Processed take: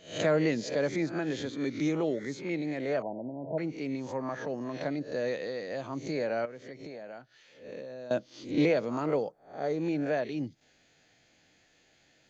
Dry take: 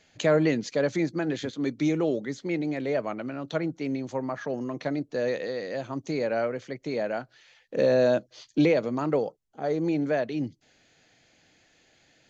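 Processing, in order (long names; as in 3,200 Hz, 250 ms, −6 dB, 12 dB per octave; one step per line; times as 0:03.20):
peak hold with a rise ahead of every peak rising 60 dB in 0.42 s
0:03.02–0:03.58: linear-phase brick-wall low-pass 1,000 Hz
0:06.45–0:08.11: downward compressor 8 to 1, threshold −36 dBFS, peak gain reduction 18 dB
level −4.5 dB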